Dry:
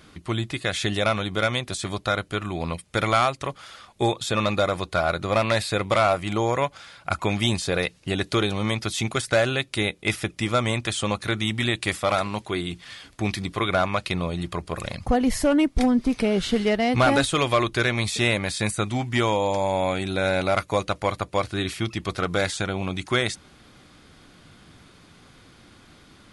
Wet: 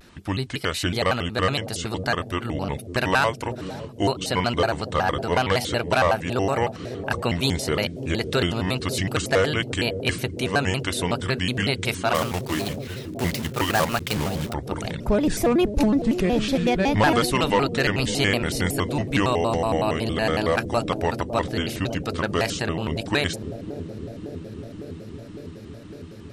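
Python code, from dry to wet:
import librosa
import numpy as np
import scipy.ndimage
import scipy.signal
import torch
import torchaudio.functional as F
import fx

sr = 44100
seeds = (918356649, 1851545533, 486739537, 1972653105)

y = fx.block_float(x, sr, bits=3, at=(12.15, 14.55))
y = fx.echo_bbd(y, sr, ms=555, stages=2048, feedback_pct=83, wet_db=-9.5)
y = fx.vibrato_shape(y, sr, shape='square', rate_hz=5.4, depth_cents=250.0)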